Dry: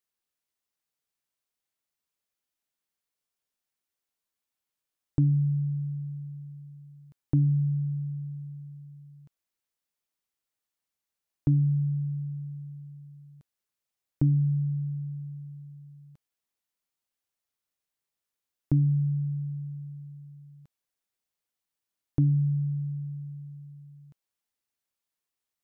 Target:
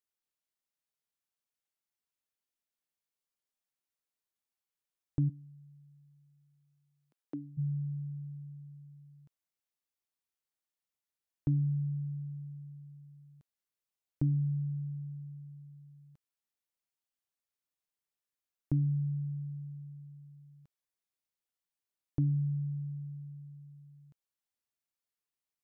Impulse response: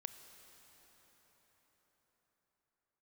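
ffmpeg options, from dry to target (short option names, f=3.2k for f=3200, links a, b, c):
-filter_complex "[0:a]asplit=3[a][b][c];[a]afade=t=out:st=5.28:d=0.02[d];[b]highpass=f=260:w=0.5412,highpass=f=260:w=1.3066,afade=t=in:st=5.28:d=0.02,afade=t=out:st=7.57:d=0.02[e];[c]afade=t=in:st=7.57:d=0.02[f];[d][e][f]amix=inputs=3:normalize=0,volume=-6.5dB"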